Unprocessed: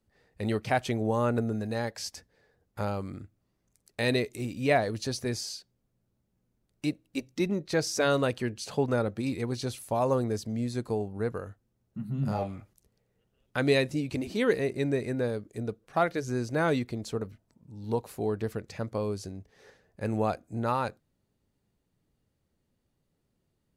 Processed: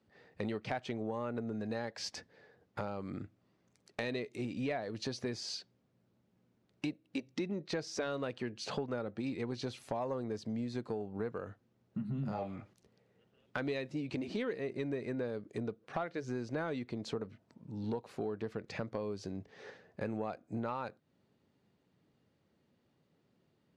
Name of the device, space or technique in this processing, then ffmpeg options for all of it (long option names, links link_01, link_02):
AM radio: -af "highpass=140,lowpass=4300,acompressor=threshold=-40dB:ratio=6,asoftclip=type=tanh:threshold=-28.5dB,volume=5.5dB"